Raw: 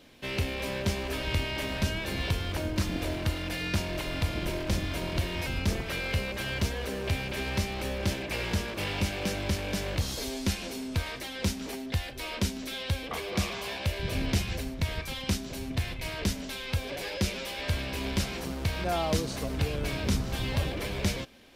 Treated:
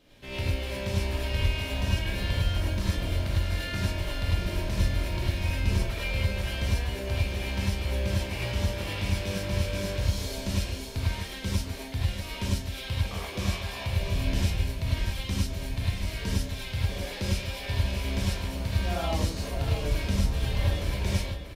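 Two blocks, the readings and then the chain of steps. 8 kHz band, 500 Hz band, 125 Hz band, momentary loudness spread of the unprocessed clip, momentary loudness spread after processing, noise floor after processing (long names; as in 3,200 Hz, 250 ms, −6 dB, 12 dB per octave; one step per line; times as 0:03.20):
−1.5 dB, −1.5 dB, +4.0 dB, 3 LU, 4 LU, −38 dBFS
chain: low-shelf EQ 87 Hz +11 dB
single-tap delay 639 ms −9 dB
reverb whose tail is shaped and stops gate 130 ms rising, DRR −5.5 dB
level −8.5 dB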